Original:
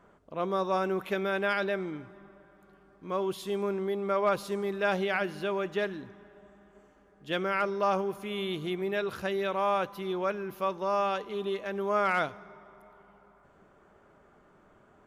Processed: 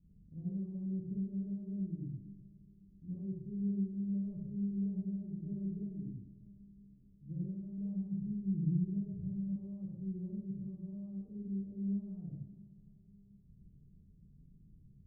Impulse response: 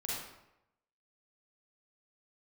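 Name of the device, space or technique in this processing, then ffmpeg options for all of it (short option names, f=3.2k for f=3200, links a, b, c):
club heard from the street: -filter_complex "[0:a]alimiter=limit=-22.5dB:level=0:latency=1:release=308,lowpass=f=170:w=0.5412,lowpass=f=170:w=1.3066[a];[1:a]atrim=start_sample=2205[b];[a][b]afir=irnorm=-1:irlink=0,asettb=1/sr,asplit=3[c][d][e];[c]atrim=end=7.774[f];[d]atrim=start=7.77:end=9.56,asetpts=PTS-STARTPTS,afade=t=in:d=0.004:c=qsin,afade=t=out:st=1.786:d=0.004:c=qsin,aecho=1:1:6.4:0.54,atrim=end_sample=78939[g];[e]atrim=start=9.556[h];[f][g]acrossfade=d=0.004:c1=hsin:c2=qsin[i];[i][h]acrossfade=d=0.004:c1=qsin:c2=hsin,volume=6.5dB"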